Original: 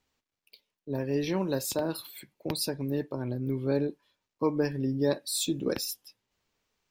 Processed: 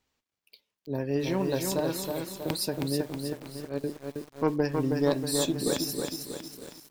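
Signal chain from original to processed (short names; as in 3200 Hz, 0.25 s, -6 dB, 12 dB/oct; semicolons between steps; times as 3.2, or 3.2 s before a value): added harmonics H 2 -8 dB, 4 -22 dB, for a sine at -13.5 dBFS; 3.12–3.84 gate -22 dBFS, range -20 dB; on a send: echo 0.916 s -20.5 dB; on the sum: lo-fi delay 0.319 s, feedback 55%, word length 8-bit, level -4 dB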